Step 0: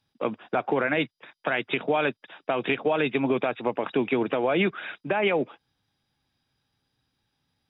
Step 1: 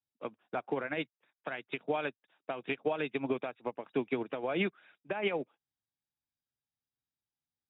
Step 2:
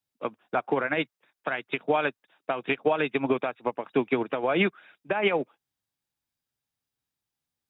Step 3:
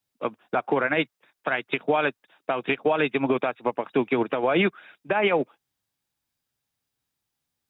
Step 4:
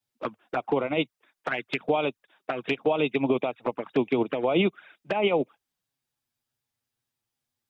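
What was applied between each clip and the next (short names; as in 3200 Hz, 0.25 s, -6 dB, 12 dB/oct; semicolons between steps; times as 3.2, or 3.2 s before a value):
upward expander 2.5:1, over -33 dBFS; gain -5.5 dB
dynamic EQ 1200 Hz, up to +4 dB, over -48 dBFS, Q 0.97; gain +7 dB
limiter -17.5 dBFS, peak gain reduction 5.5 dB; gain +5 dB
envelope flanger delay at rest 8.5 ms, full sweep at -20.5 dBFS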